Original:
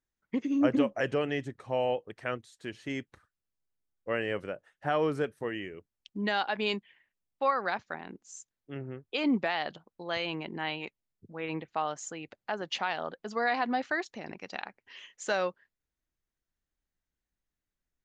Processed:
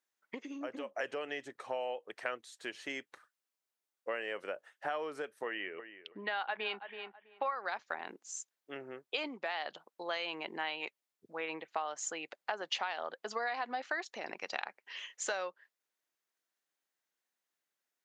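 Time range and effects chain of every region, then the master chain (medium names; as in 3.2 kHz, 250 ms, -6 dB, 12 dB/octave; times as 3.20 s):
5.46–7.55 s: low-pass 3.8 kHz 24 dB/octave + peaking EQ 1.3 kHz +4 dB 1.9 oct + filtered feedback delay 327 ms, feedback 17%, low-pass 2.4 kHz, level -16 dB
whole clip: compression 12:1, threshold -35 dBFS; high-pass 510 Hz 12 dB/octave; trim +4 dB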